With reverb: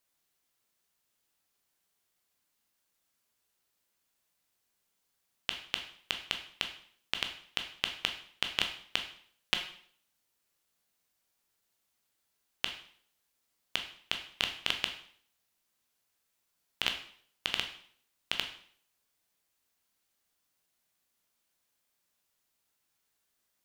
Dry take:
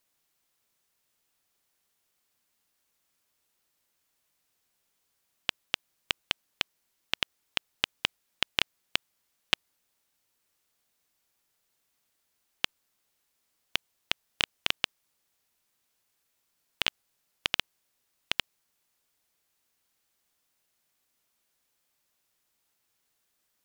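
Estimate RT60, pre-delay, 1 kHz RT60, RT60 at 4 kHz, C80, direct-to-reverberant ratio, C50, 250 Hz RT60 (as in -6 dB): 0.55 s, 7 ms, 0.55 s, 0.55 s, 12.5 dB, 4.5 dB, 9.5 dB, 0.60 s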